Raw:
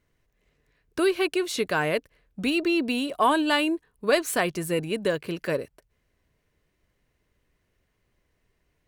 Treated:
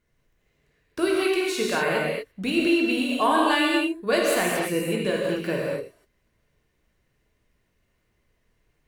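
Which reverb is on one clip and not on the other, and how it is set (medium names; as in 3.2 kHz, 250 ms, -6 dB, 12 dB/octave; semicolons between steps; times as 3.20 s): gated-style reverb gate 270 ms flat, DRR -3.5 dB; trim -3 dB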